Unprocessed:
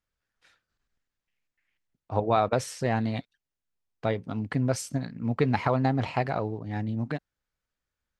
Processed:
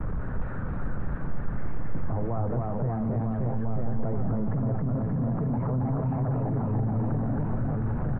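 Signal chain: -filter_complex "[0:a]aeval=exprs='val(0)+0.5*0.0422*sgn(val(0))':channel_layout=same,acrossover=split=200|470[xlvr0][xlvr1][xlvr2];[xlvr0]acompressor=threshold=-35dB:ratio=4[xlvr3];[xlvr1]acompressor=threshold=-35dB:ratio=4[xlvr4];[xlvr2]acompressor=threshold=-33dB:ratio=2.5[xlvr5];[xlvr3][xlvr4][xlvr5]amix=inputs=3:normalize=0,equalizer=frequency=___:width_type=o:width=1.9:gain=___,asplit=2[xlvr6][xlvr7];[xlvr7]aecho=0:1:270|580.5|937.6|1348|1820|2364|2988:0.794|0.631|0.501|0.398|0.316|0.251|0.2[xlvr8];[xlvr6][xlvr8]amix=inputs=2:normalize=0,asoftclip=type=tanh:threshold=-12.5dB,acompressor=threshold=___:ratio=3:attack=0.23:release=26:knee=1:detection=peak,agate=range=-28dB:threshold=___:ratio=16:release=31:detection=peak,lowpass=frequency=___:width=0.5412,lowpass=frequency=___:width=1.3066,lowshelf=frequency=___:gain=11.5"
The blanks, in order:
150, 11, -28dB, -42dB, 1300, 1300, 66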